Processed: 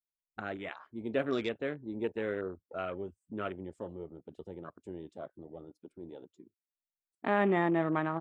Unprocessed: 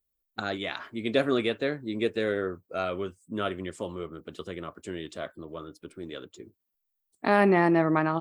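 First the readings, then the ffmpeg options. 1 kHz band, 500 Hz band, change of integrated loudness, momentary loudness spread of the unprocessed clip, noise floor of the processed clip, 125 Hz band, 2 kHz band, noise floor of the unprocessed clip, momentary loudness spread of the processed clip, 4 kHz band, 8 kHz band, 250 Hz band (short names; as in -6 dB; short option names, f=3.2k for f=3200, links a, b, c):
-6.5 dB, -6.5 dB, -6.0 dB, 19 LU, under -85 dBFS, -6.5 dB, -7.0 dB, -81 dBFS, 20 LU, -12.0 dB, under -15 dB, -6.5 dB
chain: -af "afwtdn=0.0158,volume=-6.5dB"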